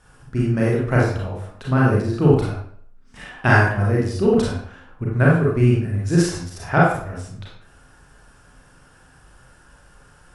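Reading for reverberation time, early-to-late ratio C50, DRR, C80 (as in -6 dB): 0.60 s, 0.5 dB, -5.0 dB, 5.0 dB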